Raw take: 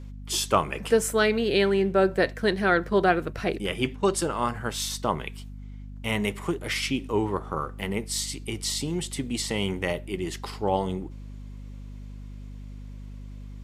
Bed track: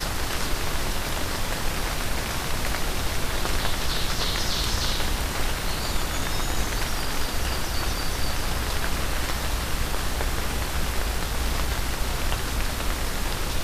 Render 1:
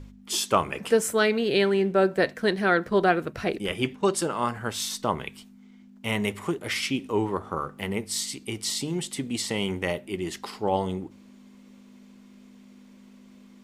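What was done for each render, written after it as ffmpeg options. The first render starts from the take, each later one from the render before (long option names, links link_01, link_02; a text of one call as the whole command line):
ffmpeg -i in.wav -af "bandreject=frequency=50:width_type=h:width=4,bandreject=frequency=100:width_type=h:width=4,bandreject=frequency=150:width_type=h:width=4" out.wav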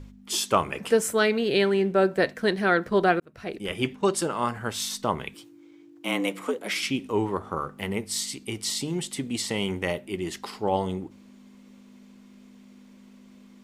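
ffmpeg -i in.wav -filter_complex "[0:a]asettb=1/sr,asplit=3[link_01][link_02][link_03];[link_01]atrim=end=5.344[link_04];[link_02]atrim=start=5.34:end=6.83,asetpts=PTS-STARTPTS,afade=type=in:duration=0.004:curve=qsin,afade=type=out:start_time=1.486:duration=0.004:curve=qsin,afreqshift=90[link_05];[link_03]atrim=start=6.826[link_06];[link_04][link_05]acrossfade=duration=0.004:curve1=hsin:curve2=qsin[link_07];[link_07][link_06]acrossfade=duration=0.004:curve1=qsin:curve2=hsin,asplit=2[link_08][link_09];[link_08]atrim=end=3.2,asetpts=PTS-STARTPTS,afade=type=out:start_time=3.196:duration=0.004:curve=hsin[link_10];[link_09]atrim=start=3.2,asetpts=PTS-STARTPTS,afade=type=in:duration=0.62[link_11];[link_10][link_11]concat=n=2:v=0:a=1" out.wav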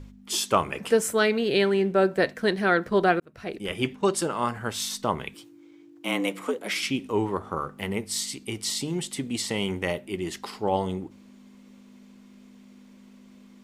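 ffmpeg -i in.wav -af anull out.wav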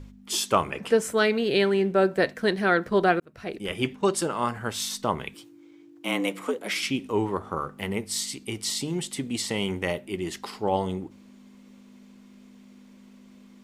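ffmpeg -i in.wav -filter_complex "[0:a]asettb=1/sr,asplit=3[link_01][link_02][link_03];[link_01]atrim=end=0.704[link_04];[link_02]atrim=start=0.7:end=1.17,asetpts=PTS-STARTPTS,afade=type=in:duration=0.004:curve=qsin,afade=type=out:start_time=0.466:duration=0.004:curve=qsin,highshelf=frequency=7300:gain=-8[link_05];[link_03]atrim=start=1.166[link_06];[link_04][link_05]acrossfade=duration=0.004:curve1=hsin:curve2=qsin[link_07];[link_07][link_06]acrossfade=duration=0.004:curve1=qsin:curve2=hsin" out.wav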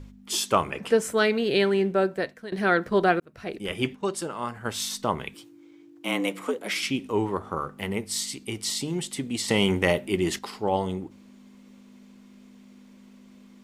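ffmpeg -i in.wav -filter_complex "[0:a]asettb=1/sr,asplit=3[link_01][link_02][link_03];[link_01]atrim=end=9.484[link_04];[link_02]atrim=start=9.48:end=10.39,asetpts=PTS-STARTPTS,afade=type=in:duration=0.004:curve=qsin,afade=type=out:start_time=0.906:duration=0.004:curve=qsin,acontrast=54[link_05];[link_03]atrim=start=10.386[link_06];[link_04][link_05]acrossfade=duration=0.004:curve1=hsin:curve2=qsin[link_07];[link_07][link_06]acrossfade=duration=0.004:curve1=qsin:curve2=hsin,asplit=4[link_08][link_09][link_10][link_11];[link_08]atrim=end=2.52,asetpts=PTS-STARTPTS,afade=type=out:start_time=1.85:duration=0.67:silence=0.112202[link_12];[link_09]atrim=start=2.52:end=3.952,asetpts=PTS-STARTPTS,afade=type=in:duration=0.004:curve=hsin:silence=0.112202[link_13];[link_10]atrim=start=3.948:end=4.652,asetpts=PTS-STARTPTS,volume=-5dB[link_14];[link_11]atrim=start=4.648[link_15];[link_12][link_13]concat=n=2:v=0:a=1[link_16];[link_16][link_14]acrossfade=duration=0.004:curve1=hsin:curve2=hsin[link_17];[link_17][link_15]acrossfade=duration=0.004:curve1=hsin:curve2=hsin" out.wav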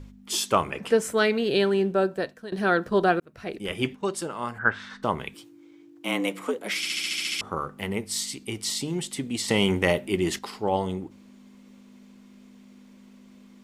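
ffmpeg -i in.wav -filter_complex "[0:a]asettb=1/sr,asplit=3[link_01][link_02][link_03];[link_01]atrim=end=1.494[link_04];[link_02]atrim=start=1.49:end=3.19,asetpts=PTS-STARTPTS,afade=type=in:duration=0.004:curve=qsin,afade=type=out:start_time=1.696:duration=0.004:curve=qsin,equalizer=frequency=2100:width=5.8:gain=-10[link_05];[link_03]atrim=start=3.186[link_06];[link_04][link_05]acrossfade=duration=0.004:curve1=hsin:curve2=qsin[link_07];[link_07][link_06]acrossfade=duration=0.004:curve1=qsin:curve2=hsin,asplit=3[link_08][link_09][link_10];[link_08]afade=type=out:start_time=4.58:duration=0.02[link_11];[link_09]lowpass=frequency=1600:width_type=q:width=6.5,afade=type=in:start_time=4.58:duration=0.02,afade=type=out:start_time=5.02:duration=0.02[link_12];[link_10]afade=type=in:start_time=5.02:duration=0.02[link_13];[link_11][link_12][link_13]amix=inputs=3:normalize=0,asplit=10[link_14][link_15][link_16][link_17][link_18][link_19][link_20][link_21][link_22][link_23];[link_14]atrim=end=6.852[link_24];[link_15]atrim=start=6.778:end=6.852[link_25];[link_16]atrim=start=6.778:end=6.852[link_26];[link_17]atrim=start=6.778:end=6.852[link_27];[link_18]atrim=start=6.778:end=6.852[link_28];[link_19]atrim=start=6.778:end=6.852[link_29];[link_20]atrim=start=6.778:end=6.852[link_30];[link_21]atrim=start=6.778:end=6.852[link_31];[link_22]atrim=start=6.778:end=6.852[link_32];[link_23]atrim=start=7.408[link_33];[link_24][link_25]acrossfade=duration=0.004:curve1=hsin:curve2=hsin[link_34];[link_34][link_26]acrossfade=duration=0.004:curve1=hsin:curve2=hsin[link_35];[link_35][link_27]acrossfade=duration=0.004:curve1=hsin:curve2=hsin[link_36];[link_36][link_28]acrossfade=duration=0.004:curve1=hsin:curve2=hsin[link_37];[link_37][link_29]acrossfade=duration=0.004:curve1=hsin:curve2=hsin[link_38];[link_38][link_30]acrossfade=duration=0.004:curve1=hsin:curve2=hsin[link_39];[link_39][link_31]acrossfade=duration=0.004:curve1=hsin:curve2=hsin[link_40];[link_40][link_32]acrossfade=duration=0.004:curve1=hsin:curve2=hsin[link_41];[link_41][link_33]acrossfade=duration=0.004:curve1=hsin:curve2=hsin" out.wav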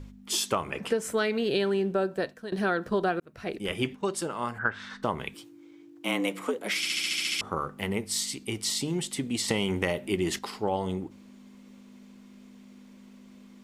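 ffmpeg -i in.wav -af "acompressor=threshold=-23dB:ratio=6" out.wav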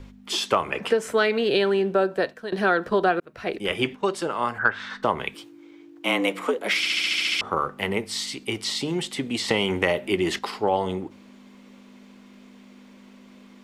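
ffmpeg -i in.wav -filter_complex "[0:a]acrossover=split=340|4600[link_01][link_02][link_03];[link_02]acontrast=90[link_04];[link_03]alimiter=level_in=6.5dB:limit=-24dB:level=0:latency=1:release=131,volume=-6.5dB[link_05];[link_01][link_04][link_05]amix=inputs=3:normalize=0" out.wav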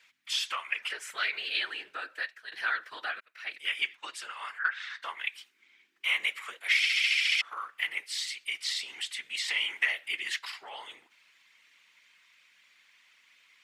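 ffmpeg -i in.wav -af "highpass=frequency=2000:width_type=q:width=1.8,afftfilt=real='hypot(re,im)*cos(2*PI*random(0))':imag='hypot(re,im)*sin(2*PI*random(1))':win_size=512:overlap=0.75" out.wav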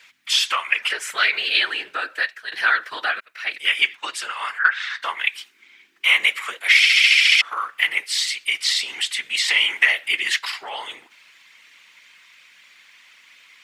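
ffmpeg -i in.wav -af "volume=12dB,alimiter=limit=-2dB:level=0:latency=1" out.wav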